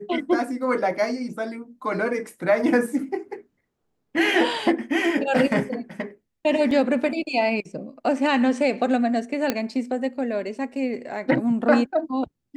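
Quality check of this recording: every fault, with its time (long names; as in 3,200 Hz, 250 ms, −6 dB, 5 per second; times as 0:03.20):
0:06.71: drop-out 2.5 ms
0:09.50: click −7 dBFS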